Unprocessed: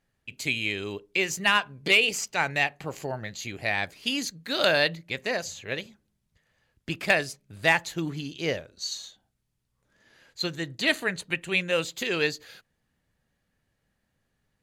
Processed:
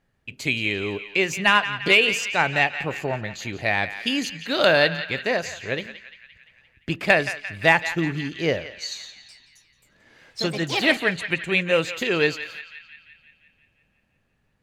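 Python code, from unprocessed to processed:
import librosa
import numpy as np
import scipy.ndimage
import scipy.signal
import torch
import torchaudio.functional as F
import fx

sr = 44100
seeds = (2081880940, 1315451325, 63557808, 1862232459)

y = fx.high_shelf(x, sr, hz=4100.0, db=-9.5)
y = fx.echo_pitch(y, sr, ms=267, semitones=4, count=3, db_per_echo=-6.0, at=(9.02, 11.14))
y = fx.echo_banded(y, sr, ms=173, feedback_pct=64, hz=2300.0, wet_db=-10.0)
y = F.gain(torch.from_numpy(y), 6.0).numpy()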